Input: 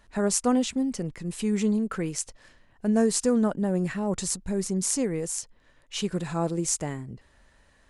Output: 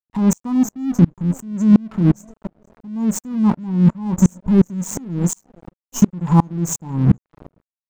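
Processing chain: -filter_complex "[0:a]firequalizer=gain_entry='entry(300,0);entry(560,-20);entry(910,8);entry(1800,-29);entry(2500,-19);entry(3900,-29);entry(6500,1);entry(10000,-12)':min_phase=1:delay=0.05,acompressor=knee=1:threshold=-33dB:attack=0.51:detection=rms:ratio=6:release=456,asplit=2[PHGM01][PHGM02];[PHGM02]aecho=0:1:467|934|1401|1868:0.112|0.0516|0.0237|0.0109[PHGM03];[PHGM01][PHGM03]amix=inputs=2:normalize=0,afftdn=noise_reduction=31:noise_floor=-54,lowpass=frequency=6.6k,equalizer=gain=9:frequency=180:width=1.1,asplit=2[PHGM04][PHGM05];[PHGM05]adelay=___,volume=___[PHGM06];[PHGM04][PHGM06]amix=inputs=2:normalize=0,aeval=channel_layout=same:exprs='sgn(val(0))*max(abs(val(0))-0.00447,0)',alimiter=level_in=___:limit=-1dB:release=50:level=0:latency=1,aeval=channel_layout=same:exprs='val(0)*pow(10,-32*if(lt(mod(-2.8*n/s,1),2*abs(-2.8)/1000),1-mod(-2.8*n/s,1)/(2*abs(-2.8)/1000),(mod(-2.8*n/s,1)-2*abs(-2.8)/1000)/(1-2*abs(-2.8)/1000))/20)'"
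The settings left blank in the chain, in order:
23, -11.5dB, 28dB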